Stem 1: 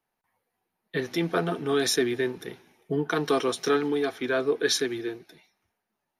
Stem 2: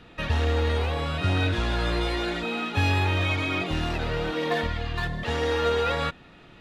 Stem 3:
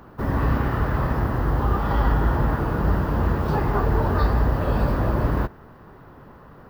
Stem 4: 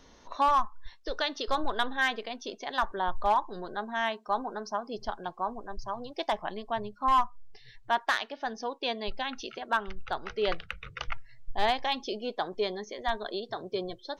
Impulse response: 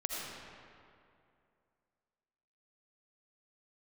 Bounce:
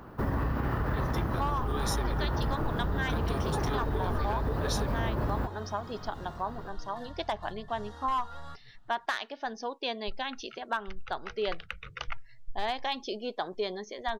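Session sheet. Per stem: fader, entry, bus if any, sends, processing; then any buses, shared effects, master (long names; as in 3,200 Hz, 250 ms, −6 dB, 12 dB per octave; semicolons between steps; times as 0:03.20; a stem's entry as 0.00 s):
−8.5 dB, 0.00 s, no send, high-shelf EQ 5,500 Hz +9 dB
−16.0 dB, 2.45 s, no send, phaser with its sweep stopped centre 1,000 Hz, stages 4
−1.5 dB, 0.00 s, no send, brickwall limiter −14.5 dBFS, peak gain reduction 5 dB
−1.0 dB, 1.00 s, no send, no processing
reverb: not used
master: downward compressor, threshold −26 dBFS, peak gain reduction 9 dB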